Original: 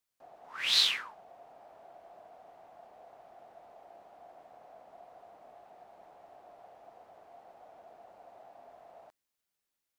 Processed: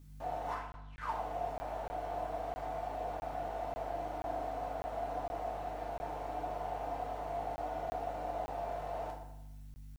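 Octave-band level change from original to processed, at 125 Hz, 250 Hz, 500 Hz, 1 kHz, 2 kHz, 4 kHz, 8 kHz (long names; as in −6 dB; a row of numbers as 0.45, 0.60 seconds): +24.0 dB, +17.0 dB, +14.5 dB, +14.0 dB, −7.5 dB, −25.5 dB, below −15 dB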